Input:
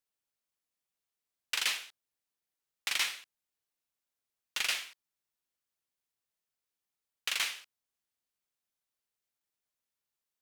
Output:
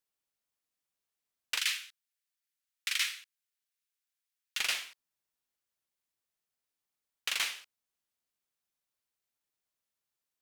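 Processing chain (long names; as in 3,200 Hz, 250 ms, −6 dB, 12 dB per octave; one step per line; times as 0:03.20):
0:01.58–0:04.59: high-pass filter 1,400 Hz 24 dB per octave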